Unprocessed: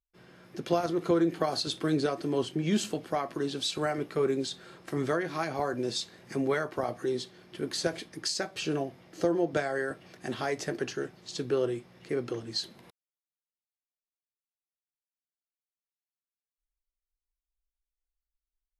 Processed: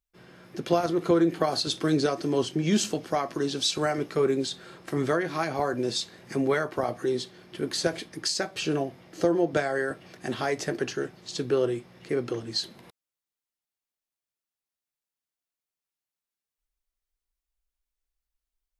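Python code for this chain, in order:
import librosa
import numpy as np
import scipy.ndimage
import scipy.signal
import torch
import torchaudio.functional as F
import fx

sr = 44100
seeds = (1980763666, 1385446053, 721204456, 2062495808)

y = fx.peak_eq(x, sr, hz=5800.0, db=6.0, octaves=0.6, at=(1.7, 4.21))
y = F.gain(torch.from_numpy(y), 3.5).numpy()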